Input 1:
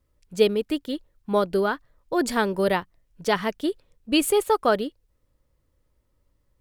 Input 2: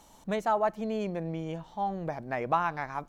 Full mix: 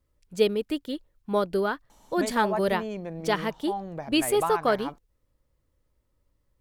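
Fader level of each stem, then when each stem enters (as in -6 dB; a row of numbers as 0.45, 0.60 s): -3.0, -2.0 dB; 0.00, 1.90 s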